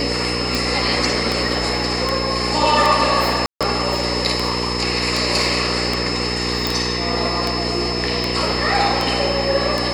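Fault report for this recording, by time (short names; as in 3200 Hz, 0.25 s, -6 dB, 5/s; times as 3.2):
hum 60 Hz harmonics 8 -25 dBFS
tick 78 rpm
tone 5200 Hz -25 dBFS
3.46–3.61 gap 0.146 s
6.67 pop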